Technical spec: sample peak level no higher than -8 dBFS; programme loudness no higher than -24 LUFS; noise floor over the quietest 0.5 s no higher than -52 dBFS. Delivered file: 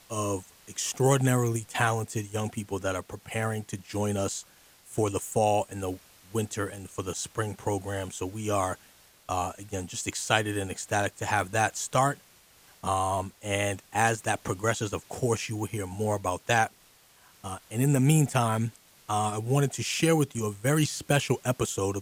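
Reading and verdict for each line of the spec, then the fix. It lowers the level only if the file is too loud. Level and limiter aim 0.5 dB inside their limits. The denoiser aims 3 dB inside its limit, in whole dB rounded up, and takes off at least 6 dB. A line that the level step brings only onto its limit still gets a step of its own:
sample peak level -5.5 dBFS: fail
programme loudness -28.5 LUFS: pass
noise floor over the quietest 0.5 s -59 dBFS: pass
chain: peak limiter -8.5 dBFS

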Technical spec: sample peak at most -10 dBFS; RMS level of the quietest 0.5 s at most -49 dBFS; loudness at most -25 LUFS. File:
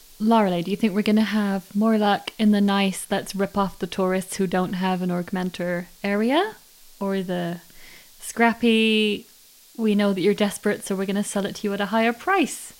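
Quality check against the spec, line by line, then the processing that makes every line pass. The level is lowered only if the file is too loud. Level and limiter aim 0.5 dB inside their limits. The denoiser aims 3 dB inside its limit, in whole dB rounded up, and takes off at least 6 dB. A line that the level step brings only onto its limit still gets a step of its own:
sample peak -6.0 dBFS: fail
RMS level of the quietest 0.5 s -51 dBFS: pass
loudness -22.5 LUFS: fail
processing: trim -3 dB; peak limiter -10.5 dBFS

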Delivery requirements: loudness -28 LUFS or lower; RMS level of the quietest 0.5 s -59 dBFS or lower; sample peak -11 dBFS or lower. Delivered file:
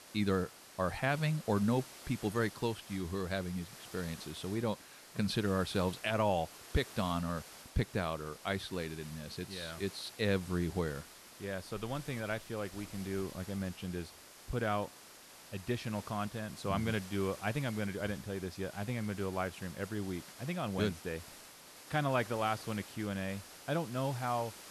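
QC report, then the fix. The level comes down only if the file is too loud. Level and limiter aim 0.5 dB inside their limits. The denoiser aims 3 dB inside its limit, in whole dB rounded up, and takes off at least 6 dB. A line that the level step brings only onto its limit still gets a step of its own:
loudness -37.0 LUFS: pass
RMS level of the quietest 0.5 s -55 dBFS: fail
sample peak -19.5 dBFS: pass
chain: noise reduction 7 dB, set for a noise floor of -55 dBFS

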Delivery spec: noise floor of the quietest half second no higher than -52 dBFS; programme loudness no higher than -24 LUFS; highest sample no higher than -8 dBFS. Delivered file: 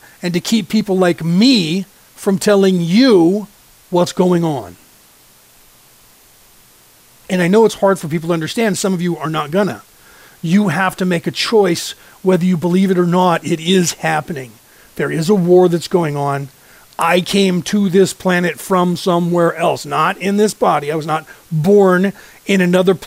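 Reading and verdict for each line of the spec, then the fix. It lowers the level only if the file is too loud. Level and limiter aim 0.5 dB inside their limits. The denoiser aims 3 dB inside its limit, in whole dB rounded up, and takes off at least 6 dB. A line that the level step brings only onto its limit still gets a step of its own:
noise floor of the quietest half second -47 dBFS: fail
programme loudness -14.5 LUFS: fail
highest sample -2.0 dBFS: fail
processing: trim -10 dB

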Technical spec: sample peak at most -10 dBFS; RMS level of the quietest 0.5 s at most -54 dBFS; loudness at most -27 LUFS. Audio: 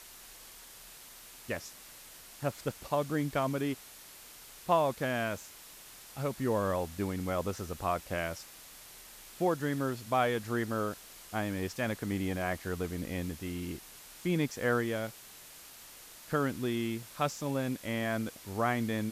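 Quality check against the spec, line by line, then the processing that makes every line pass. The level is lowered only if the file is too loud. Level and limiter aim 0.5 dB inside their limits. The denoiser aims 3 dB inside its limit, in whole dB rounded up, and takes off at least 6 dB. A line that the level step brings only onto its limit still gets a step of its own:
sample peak -14.0 dBFS: pass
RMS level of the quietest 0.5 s -52 dBFS: fail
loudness -34.0 LUFS: pass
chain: noise reduction 6 dB, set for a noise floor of -52 dBFS

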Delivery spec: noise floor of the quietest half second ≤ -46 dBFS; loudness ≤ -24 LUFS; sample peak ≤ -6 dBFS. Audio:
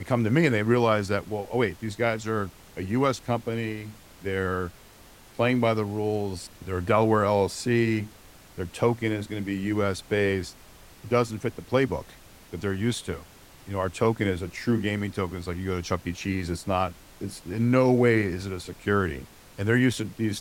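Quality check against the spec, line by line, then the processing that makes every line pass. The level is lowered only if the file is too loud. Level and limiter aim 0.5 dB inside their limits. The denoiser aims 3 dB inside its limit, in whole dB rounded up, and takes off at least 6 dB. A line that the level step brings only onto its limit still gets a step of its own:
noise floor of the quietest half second -51 dBFS: pass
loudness -26.5 LUFS: pass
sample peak -7.5 dBFS: pass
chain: none needed

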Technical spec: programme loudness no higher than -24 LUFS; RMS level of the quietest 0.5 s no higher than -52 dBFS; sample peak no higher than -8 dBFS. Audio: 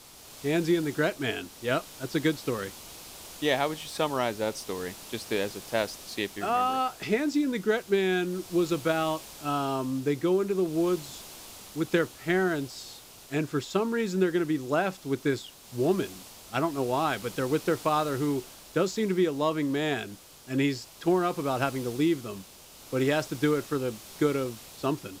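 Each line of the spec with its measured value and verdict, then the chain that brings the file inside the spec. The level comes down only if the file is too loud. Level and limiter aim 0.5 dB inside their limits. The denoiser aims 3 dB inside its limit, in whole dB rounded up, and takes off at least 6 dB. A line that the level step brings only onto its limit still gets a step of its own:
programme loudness -29.0 LUFS: pass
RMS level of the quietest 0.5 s -50 dBFS: fail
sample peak -12.5 dBFS: pass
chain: noise reduction 6 dB, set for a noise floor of -50 dBFS

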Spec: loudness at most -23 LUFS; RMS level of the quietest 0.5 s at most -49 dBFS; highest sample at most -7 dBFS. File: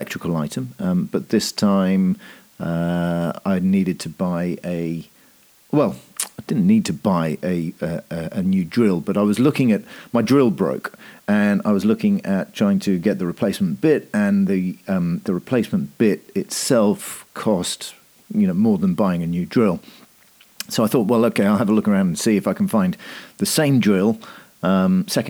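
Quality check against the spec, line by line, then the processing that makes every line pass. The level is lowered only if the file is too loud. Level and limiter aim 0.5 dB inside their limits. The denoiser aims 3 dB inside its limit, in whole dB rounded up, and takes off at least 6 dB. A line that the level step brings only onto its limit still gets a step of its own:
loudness -20.0 LUFS: fail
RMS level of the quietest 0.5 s -53 dBFS: pass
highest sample -5.5 dBFS: fail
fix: trim -3.5 dB

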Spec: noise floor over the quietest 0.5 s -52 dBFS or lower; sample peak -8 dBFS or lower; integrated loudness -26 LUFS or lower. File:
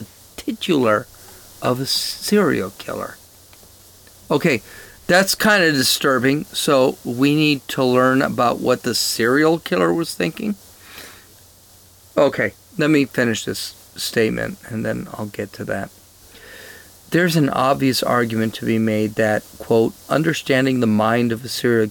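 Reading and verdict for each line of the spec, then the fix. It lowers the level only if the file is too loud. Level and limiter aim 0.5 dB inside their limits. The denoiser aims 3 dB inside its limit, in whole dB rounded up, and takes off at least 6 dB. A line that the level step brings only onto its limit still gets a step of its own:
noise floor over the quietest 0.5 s -48 dBFS: fail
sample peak -5.0 dBFS: fail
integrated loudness -18.5 LUFS: fail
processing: trim -8 dB

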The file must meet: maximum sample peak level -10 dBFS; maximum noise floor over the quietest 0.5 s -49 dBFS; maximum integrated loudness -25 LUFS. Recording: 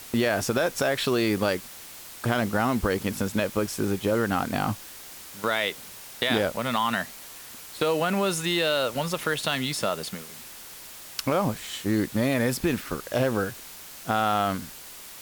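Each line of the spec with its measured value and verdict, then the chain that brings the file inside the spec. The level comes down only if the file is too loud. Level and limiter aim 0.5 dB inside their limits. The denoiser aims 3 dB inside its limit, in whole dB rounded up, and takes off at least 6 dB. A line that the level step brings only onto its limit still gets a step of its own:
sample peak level -9.0 dBFS: fail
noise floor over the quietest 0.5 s -43 dBFS: fail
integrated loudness -26.5 LUFS: pass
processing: noise reduction 9 dB, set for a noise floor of -43 dBFS; peak limiter -10.5 dBFS

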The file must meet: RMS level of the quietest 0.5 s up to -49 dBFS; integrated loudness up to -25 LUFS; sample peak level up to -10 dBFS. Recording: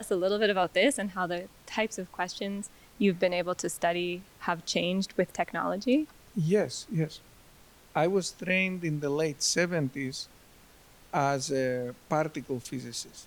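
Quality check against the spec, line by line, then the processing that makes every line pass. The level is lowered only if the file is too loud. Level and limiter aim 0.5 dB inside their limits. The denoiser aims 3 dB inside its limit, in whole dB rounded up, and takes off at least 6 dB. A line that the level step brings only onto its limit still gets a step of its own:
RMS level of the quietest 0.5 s -56 dBFS: pass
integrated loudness -30.0 LUFS: pass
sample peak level -13.0 dBFS: pass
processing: none needed

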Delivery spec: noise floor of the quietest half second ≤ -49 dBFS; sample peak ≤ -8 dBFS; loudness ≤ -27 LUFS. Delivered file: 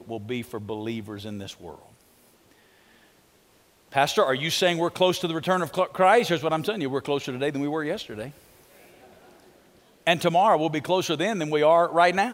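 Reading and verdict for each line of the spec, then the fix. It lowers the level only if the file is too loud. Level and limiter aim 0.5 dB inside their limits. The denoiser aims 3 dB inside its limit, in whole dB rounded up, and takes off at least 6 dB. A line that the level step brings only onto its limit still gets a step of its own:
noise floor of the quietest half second -60 dBFS: pass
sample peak -6.0 dBFS: fail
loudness -24.0 LUFS: fail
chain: trim -3.5 dB

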